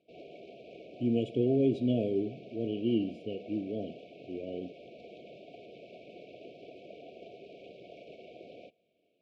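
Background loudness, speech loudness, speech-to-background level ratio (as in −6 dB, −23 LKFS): −50.5 LKFS, −32.0 LKFS, 18.5 dB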